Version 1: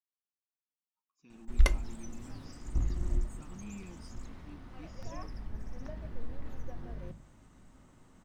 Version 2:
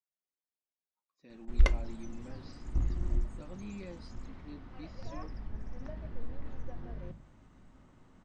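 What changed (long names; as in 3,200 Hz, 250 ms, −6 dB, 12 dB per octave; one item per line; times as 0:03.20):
speech: remove phaser with its sweep stopped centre 2,800 Hz, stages 8
master: add high-frequency loss of the air 98 metres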